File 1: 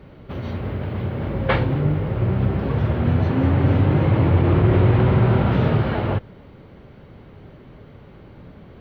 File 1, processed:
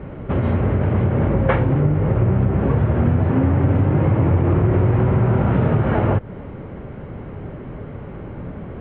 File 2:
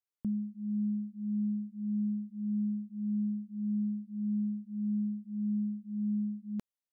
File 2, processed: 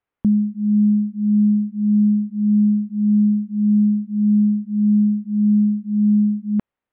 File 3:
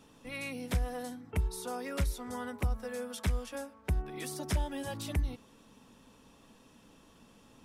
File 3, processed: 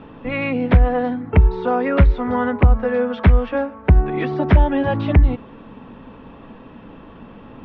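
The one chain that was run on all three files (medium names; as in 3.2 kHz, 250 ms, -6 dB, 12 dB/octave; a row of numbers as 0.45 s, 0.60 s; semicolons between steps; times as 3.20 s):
Bessel low-pass 1.8 kHz, order 6; compression, threshold -25 dBFS; normalise loudness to -18 LUFS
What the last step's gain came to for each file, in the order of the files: +11.0 dB, +16.5 dB, +20.0 dB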